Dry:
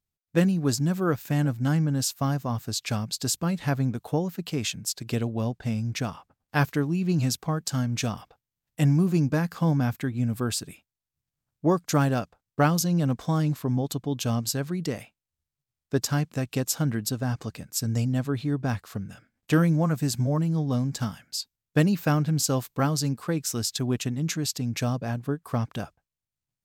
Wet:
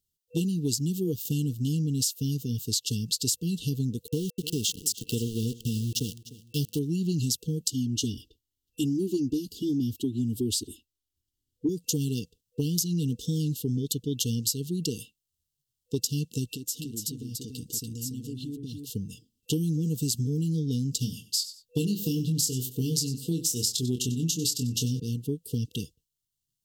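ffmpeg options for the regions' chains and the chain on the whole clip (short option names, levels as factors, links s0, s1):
-filter_complex "[0:a]asettb=1/sr,asplit=3[s0][s1][s2];[s0]atrim=end=4.074[s3];[s1]atrim=start=4.07:end=6.79,asetpts=PTS-STARTPTS,afade=t=in:d=0.004:c=qsin,afade=t=out:st=2.716:d=0.004:c=qsin,aeval=exprs='val(0)*gte(abs(val(0)),0.0188)':c=same,aecho=1:1:300|600|900:0.112|0.0415|0.0154,atrim=end_sample=119952[s4];[s2]atrim=start=6.786[s5];[s3][s4]acrossfade=d=0.004:c1=hsin:c2=qsin[s6];[s6][s5]acrossfade=d=0.004:c1=qsin:c2=hsin,asettb=1/sr,asplit=3[s7][s8][s9];[s7]atrim=end=7.714[s10];[s8]atrim=start=7.71:end=11.69,asetpts=PTS-STARTPTS,afade=t=in:d=0.004:c=qsin,afade=t=out:st=3.976:d=0.004:c=qsin,highshelf=f=4000:g=-9,aecho=1:1:3.1:0.98,atrim=end_sample=175518[s11];[s9]atrim=start=11.686[s12];[s10][s11]acrossfade=d=0.004:c1=hsin:c2=qsin[s13];[s13][s12]acrossfade=d=0.004:c1=qsin:c2=hsin,asettb=1/sr,asplit=3[s14][s15][s16];[s14]atrim=end=16.514[s17];[s15]atrim=start=16.51:end=18.9,asetpts=PTS-STARTPTS,afade=t=in:d=0.004:c=qsin,afade=t=out:st=2.386:d=0.004:c=qsin,equalizer=f=290:w=2.8:g=7,acompressor=threshold=0.0158:ratio=5:attack=3.2:release=140:knee=1:detection=peak,aecho=1:1:288:0.596,atrim=end_sample=105399[s18];[s16]atrim=start=18.896[s19];[s17][s18]acrossfade=d=0.004:c1=hsin:c2=qsin[s20];[s20][s19]acrossfade=d=0.004:c1=qsin:c2=hsin,asettb=1/sr,asplit=3[s21][s22][s23];[s21]atrim=end=20.994[s24];[s22]atrim=start=20.99:end=25,asetpts=PTS-STARTPTS,afade=t=in:d=0.004:c=qsin,afade=t=out:st=4.006:d=0.004:c=qsin,asplit=2[s25][s26];[s26]adelay=24,volume=0.531[s27];[s25][s27]amix=inputs=2:normalize=0,atrim=end_sample=176841,aecho=1:1:94|188:0.15|0.0314,atrim=end_sample=176841[s28];[s23]atrim=start=24.996[s29];[s24][s28]acrossfade=d=0.004:c1=hsin:c2=qsin[s30];[s30][s29]acrossfade=d=0.004:c1=qsin:c2=hsin,afftfilt=real='re*(1-between(b*sr/4096,490,2700))':imag='im*(1-between(b*sr/4096,490,2700))':win_size=4096:overlap=0.75,highshelf=f=2600:g=9,acompressor=threshold=0.0631:ratio=6"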